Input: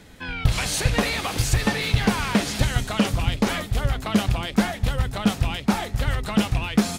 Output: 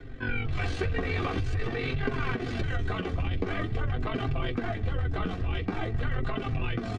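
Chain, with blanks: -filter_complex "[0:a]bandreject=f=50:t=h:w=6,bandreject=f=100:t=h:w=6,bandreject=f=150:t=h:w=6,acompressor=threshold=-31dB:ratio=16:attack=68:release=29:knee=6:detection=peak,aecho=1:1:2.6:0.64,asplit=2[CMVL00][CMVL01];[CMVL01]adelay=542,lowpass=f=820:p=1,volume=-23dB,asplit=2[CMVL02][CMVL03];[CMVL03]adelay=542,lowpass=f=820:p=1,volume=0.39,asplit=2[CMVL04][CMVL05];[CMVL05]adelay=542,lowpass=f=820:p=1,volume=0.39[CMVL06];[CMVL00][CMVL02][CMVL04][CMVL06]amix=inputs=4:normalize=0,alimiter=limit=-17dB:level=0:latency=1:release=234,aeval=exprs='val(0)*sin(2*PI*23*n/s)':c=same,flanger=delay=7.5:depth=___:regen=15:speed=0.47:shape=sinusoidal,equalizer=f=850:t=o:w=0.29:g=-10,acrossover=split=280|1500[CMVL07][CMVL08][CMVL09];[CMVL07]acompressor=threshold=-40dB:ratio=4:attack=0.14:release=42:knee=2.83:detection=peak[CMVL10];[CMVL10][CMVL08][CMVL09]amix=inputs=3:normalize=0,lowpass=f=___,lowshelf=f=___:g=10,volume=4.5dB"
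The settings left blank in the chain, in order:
3.6, 2200, 310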